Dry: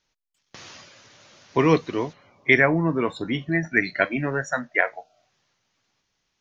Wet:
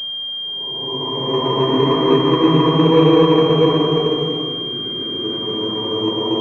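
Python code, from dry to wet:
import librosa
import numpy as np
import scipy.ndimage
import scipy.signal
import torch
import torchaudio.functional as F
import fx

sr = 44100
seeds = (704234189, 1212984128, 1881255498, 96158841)

y = fx.paulstretch(x, sr, seeds[0], factor=11.0, window_s=0.25, from_s=1.42)
y = fx.pwm(y, sr, carrier_hz=3200.0)
y = F.gain(torch.from_numpy(y), 4.0).numpy()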